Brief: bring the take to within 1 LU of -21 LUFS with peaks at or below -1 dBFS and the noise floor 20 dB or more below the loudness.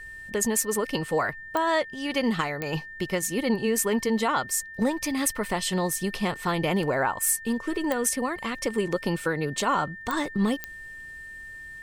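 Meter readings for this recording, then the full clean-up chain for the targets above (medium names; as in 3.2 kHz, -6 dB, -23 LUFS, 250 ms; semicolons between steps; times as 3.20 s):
clicks found 5; steady tone 1.8 kHz; tone level -39 dBFS; loudness -26.5 LUFS; peak level -9.0 dBFS; loudness target -21.0 LUFS
-> de-click; band-stop 1.8 kHz, Q 30; trim +5.5 dB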